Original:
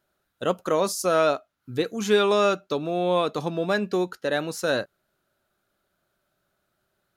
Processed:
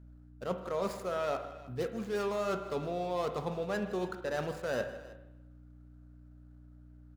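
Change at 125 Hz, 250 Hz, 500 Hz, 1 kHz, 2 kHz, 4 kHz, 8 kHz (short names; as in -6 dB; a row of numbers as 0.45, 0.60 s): -7.0, -10.5, -10.5, -10.5, -11.5, -16.0, -17.0 dB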